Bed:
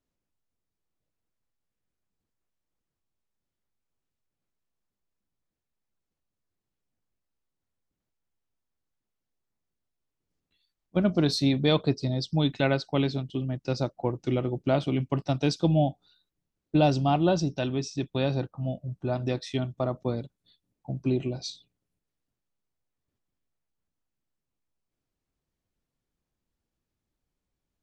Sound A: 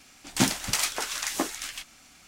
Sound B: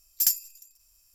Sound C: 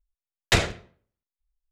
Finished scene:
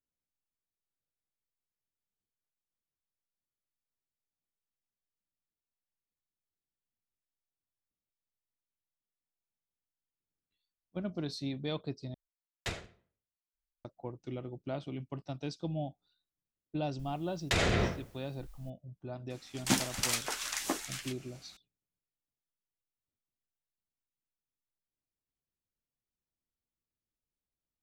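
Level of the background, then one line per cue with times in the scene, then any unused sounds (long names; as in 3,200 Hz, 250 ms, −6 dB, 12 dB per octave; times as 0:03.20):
bed −13.5 dB
0:12.14: overwrite with C −17.5 dB
0:16.99: mix in C −12.5 dB + envelope flattener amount 100%
0:19.30: mix in A −5.5 dB
not used: B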